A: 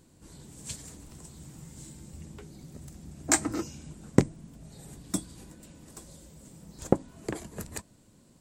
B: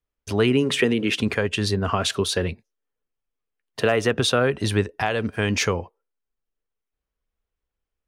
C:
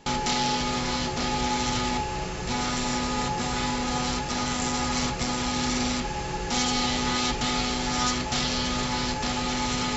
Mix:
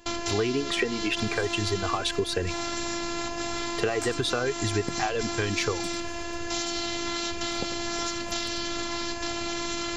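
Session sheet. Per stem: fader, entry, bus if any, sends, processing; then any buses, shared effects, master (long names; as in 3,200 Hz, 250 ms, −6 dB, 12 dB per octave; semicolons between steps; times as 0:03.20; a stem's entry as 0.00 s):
−9.0 dB, 0.70 s, no send, echo send −12 dB, no processing
0.0 dB, 0.00 s, no send, no echo send, reverb reduction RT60 1.9 s; high-shelf EQ 8,200 Hz −11 dB; comb filter 2.6 ms, depth 42%
+1.0 dB, 0.00 s, no send, no echo send, phases set to zero 343 Hz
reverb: not used
echo: single-tap delay 96 ms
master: downward compressor 5 to 1, threshold −23 dBFS, peak gain reduction 9.5 dB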